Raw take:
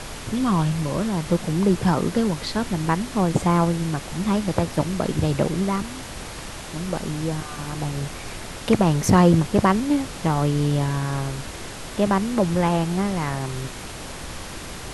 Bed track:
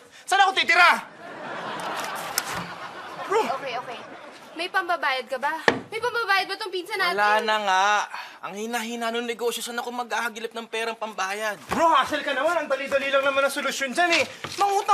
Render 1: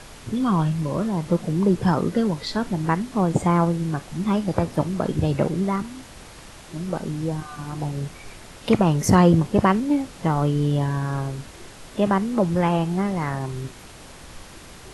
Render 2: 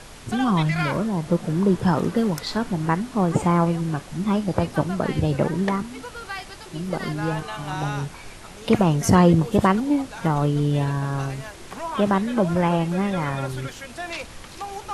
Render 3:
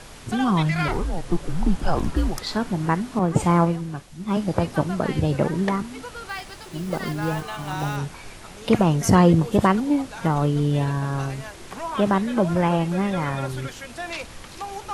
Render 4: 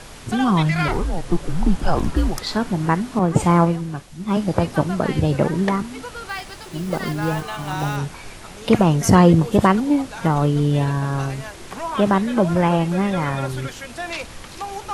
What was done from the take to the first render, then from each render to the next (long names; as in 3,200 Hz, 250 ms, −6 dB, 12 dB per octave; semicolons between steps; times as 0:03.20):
noise reduction from a noise print 8 dB
mix in bed track −12 dB
0:00.88–0:02.42: frequency shifter −170 Hz; 0:03.19–0:04.37: multiband upward and downward expander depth 100%; 0:06.29–0:07.97: one scale factor per block 5 bits
level +3 dB